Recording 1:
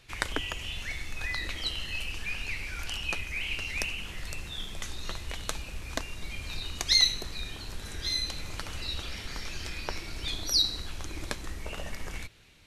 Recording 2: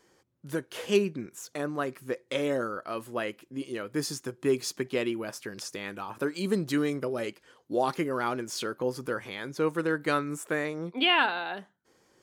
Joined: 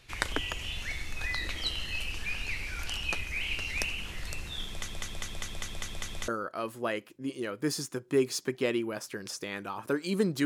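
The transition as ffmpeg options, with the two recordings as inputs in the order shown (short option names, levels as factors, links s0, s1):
-filter_complex "[0:a]apad=whole_dur=10.45,atrim=end=10.45,asplit=8[s0][s1][s2][s3][s4][s5][s6][s7];[s0]atrim=end=4.882[s8];[s1]atrim=start=4.678:end=4.882[s9];[s2]atrim=start=4.678:end=4.882[s10];[s3]atrim=start=4.678:end=4.882[s11];[s4]atrim=start=4.678:end=4.882[s12];[s5]atrim=start=4.678:end=4.882[s13];[s6]atrim=start=4.678:end=4.882[s14];[s7]atrim=start=4.678:end=4.882[s15];[1:a]atrim=start=2.598:end=6.77[s16];[s8][s9]acrossfade=d=0.004:c1=hsin:c2=hsin[s17];[s17][s10]acrossfade=d=0.004:c1=hsin:c2=hsin[s18];[s18][s11]acrossfade=d=0.004:c1=hsin:c2=hsin[s19];[s19][s12]acrossfade=d=0.004:c1=hsin:c2=hsin[s20];[s20][s13]acrossfade=d=0.004:c1=hsin:c2=hsin[s21];[s21][s14]acrossfade=d=0.004:c1=hsin:c2=hsin[s22];[s22][s15]acrossfade=d=0.004:c1=hsin:c2=hsin[s23];[s23][s16]acrossfade=d=0.004:c1=hsin:c2=hsin"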